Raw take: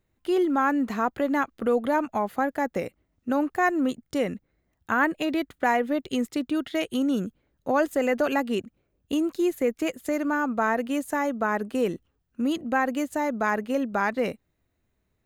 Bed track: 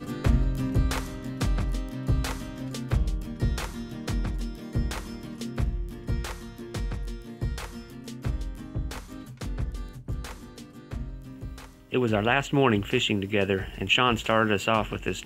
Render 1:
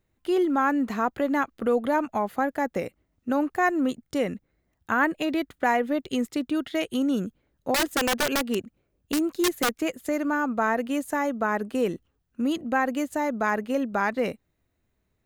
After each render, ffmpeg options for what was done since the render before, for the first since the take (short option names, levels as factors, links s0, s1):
-filter_complex "[0:a]asettb=1/sr,asplit=3[s0][s1][s2];[s0]atrim=end=7.744[s3];[s1]atrim=start=7.74:end=9.74,asetpts=PTS-STARTPTS,afade=t=in:d=0.004:c=qsin,afade=t=out:st=1.996:d=0.004:c=qsin,aeval=exprs='(mod(7.5*val(0)+1,2)-1)/7.5':c=same[s4];[s2]atrim=start=9.736[s5];[s3][s4]acrossfade=d=0.004:c1=hsin:c2=qsin[s6];[s6][s5]acrossfade=d=0.004:c1=qsin:c2=hsin"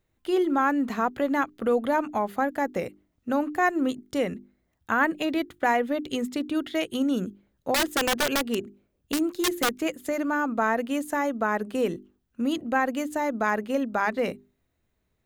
-af "equalizer=f=3400:w=4.4:g=2,bandreject=f=50:t=h:w=6,bandreject=f=100:t=h:w=6,bandreject=f=150:t=h:w=6,bandreject=f=200:t=h:w=6,bandreject=f=250:t=h:w=6,bandreject=f=300:t=h:w=6,bandreject=f=350:t=h:w=6,bandreject=f=400:t=h:w=6"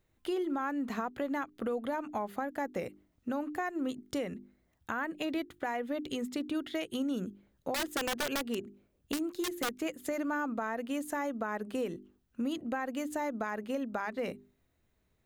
-af "alimiter=limit=0.126:level=0:latency=1:release=334,acompressor=threshold=0.0158:ratio=2"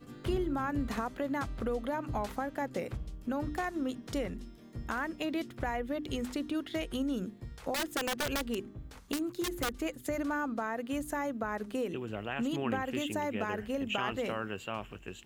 -filter_complex "[1:a]volume=0.188[s0];[0:a][s0]amix=inputs=2:normalize=0"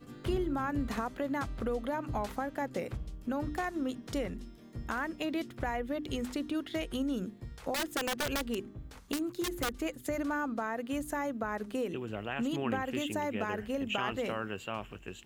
-af anull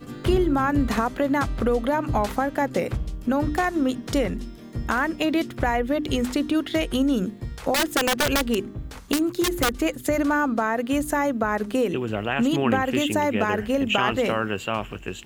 -af "volume=3.76"